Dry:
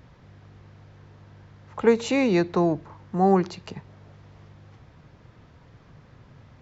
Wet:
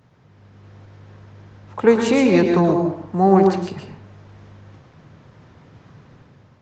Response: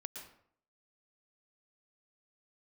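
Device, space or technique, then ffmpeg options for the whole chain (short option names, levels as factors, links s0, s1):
far-field microphone of a smart speaker: -filter_complex "[1:a]atrim=start_sample=2205[s0];[0:a][s0]afir=irnorm=-1:irlink=0,highpass=f=85:w=0.5412,highpass=f=85:w=1.3066,dynaudnorm=f=160:g=7:m=2.37,volume=1.33" -ar 48000 -c:a libopus -b:a 16k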